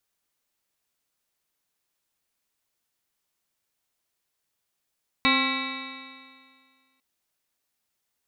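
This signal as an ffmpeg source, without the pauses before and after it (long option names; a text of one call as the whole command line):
ffmpeg -f lavfi -i "aevalsrc='0.0668*pow(10,-3*t/1.94)*sin(2*PI*262.39*t)+0.0188*pow(10,-3*t/1.94)*sin(2*PI*527.13*t)+0.0211*pow(10,-3*t/1.94)*sin(2*PI*796.54*t)+0.0631*pow(10,-3*t/1.94)*sin(2*PI*1072.86*t)+0.0299*pow(10,-3*t/1.94)*sin(2*PI*1358.24*t)+0.00944*pow(10,-3*t/1.94)*sin(2*PI*1654.71*t)+0.0473*pow(10,-3*t/1.94)*sin(2*PI*1964.18*t)+0.0708*pow(10,-3*t/1.94)*sin(2*PI*2288.39*t)+0.0422*pow(10,-3*t/1.94)*sin(2*PI*2628.93*t)+0.01*pow(10,-3*t/1.94)*sin(2*PI*2987.26*t)+0.00841*pow(10,-3*t/1.94)*sin(2*PI*3364.67*t)+0.0631*pow(10,-3*t/1.94)*sin(2*PI*3762.31*t)+0.0282*pow(10,-3*t/1.94)*sin(2*PI*4181.2*t)':duration=1.75:sample_rate=44100" out.wav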